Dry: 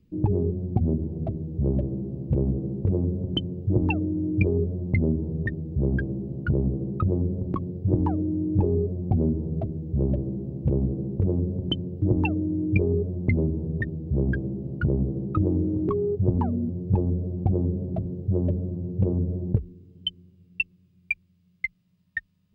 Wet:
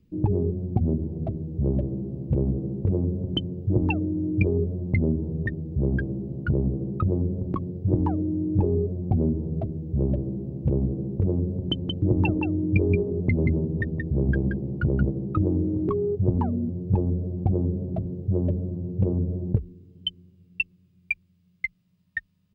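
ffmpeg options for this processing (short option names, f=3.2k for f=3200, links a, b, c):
-filter_complex "[0:a]asplit=3[a][b][c];[a]afade=t=out:st=11.76:d=0.02[d];[b]aecho=1:1:177:0.596,afade=t=in:st=11.76:d=0.02,afade=t=out:st=15.09:d=0.02[e];[c]afade=t=in:st=15.09:d=0.02[f];[d][e][f]amix=inputs=3:normalize=0"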